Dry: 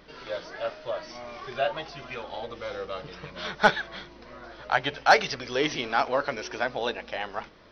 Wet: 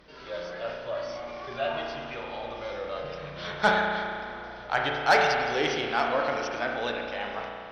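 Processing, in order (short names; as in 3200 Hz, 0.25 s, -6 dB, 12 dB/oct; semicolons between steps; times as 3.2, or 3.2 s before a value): spring tank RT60 2.4 s, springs 34 ms, chirp 60 ms, DRR 1 dB; transient shaper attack -2 dB, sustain +3 dB; added harmonics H 2 -21 dB, 5 -22 dB, 7 -26 dB, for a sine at -5.5 dBFS; gain -3 dB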